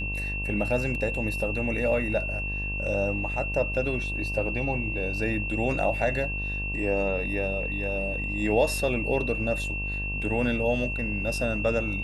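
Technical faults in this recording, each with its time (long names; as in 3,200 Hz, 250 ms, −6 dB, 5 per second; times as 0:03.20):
mains buzz 50 Hz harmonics 23 −33 dBFS
whistle 2,700 Hz −31 dBFS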